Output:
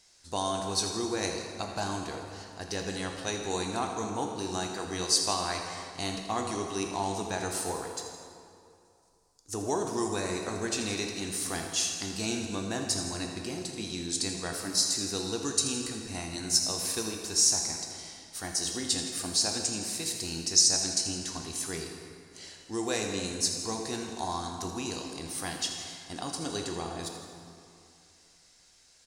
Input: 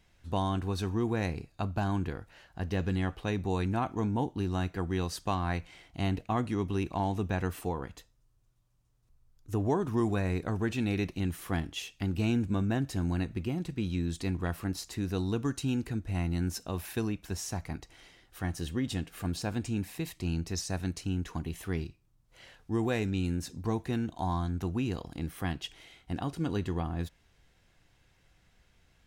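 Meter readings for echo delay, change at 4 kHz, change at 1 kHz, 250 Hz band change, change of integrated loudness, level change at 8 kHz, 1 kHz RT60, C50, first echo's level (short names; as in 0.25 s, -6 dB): 82 ms, +13.0 dB, +2.0 dB, -4.0 dB, +2.5 dB, +18.0 dB, 2.6 s, 3.0 dB, -12.5 dB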